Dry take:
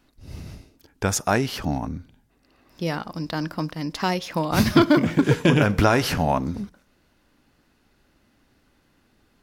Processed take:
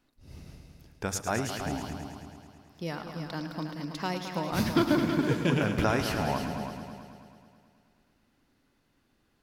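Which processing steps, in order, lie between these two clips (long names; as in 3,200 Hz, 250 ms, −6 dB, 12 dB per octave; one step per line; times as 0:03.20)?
mains-hum notches 50/100 Hz
echo machine with several playback heads 108 ms, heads all three, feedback 50%, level −11 dB
level −9 dB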